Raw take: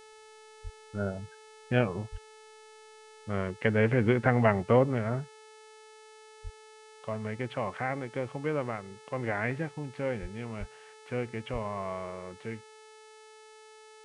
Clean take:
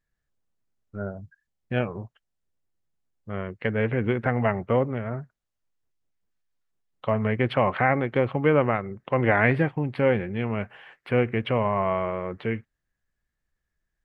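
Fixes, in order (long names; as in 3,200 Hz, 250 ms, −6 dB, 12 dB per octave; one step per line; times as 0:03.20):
hum removal 434.4 Hz, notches 24
high-pass at the plosives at 0:00.63/0:02.11/0:06.43/0:10.21/0:10.59/0:11.52
level 0 dB, from 0:05.28 +11 dB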